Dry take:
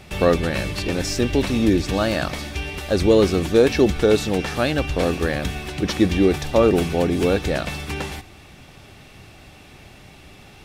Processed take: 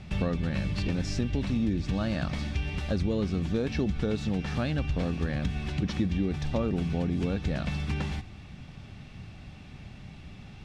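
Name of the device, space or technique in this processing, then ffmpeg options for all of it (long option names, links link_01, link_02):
jukebox: -af "lowpass=5800,lowshelf=frequency=270:width_type=q:width=1.5:gain=8,acompressor=threshold=-19dB:ratio=4,volume=-6.5dB"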